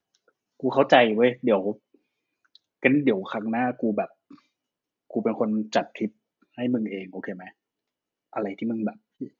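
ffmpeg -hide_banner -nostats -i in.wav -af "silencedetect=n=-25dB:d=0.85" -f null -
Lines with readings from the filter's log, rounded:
silence_start: 1.71
silence_end: 2.85 | silence_duration: 1.13
silence_start: 4.05
silence_end: 5.16 | silence_duration: 1.11
silence_start: 7.32
silence_end: 8.36 | silence_duration: 1.04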